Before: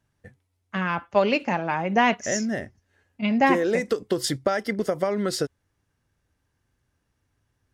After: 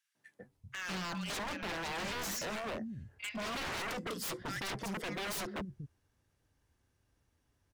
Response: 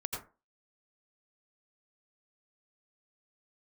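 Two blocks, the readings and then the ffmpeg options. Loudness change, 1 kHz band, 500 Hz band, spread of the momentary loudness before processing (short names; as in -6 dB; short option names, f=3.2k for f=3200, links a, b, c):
-14.0 dB, -15.5 dB, -18.5 dB, 9 LU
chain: -filter_complex "[0:a]alimiter=limit=-17.5dB:level=0:latency=1:release=57,acrossover=split=160|1600[a][b][c];[b]adelay=150[d];[a]adelay=390[e];[e][d][c]amix=inputs=3:normalize=0,aeval=exprs='0.0251*(abs(mod(val(0)/0.0251+3,4)-2)-1)':c=same,volume=-1.5dB"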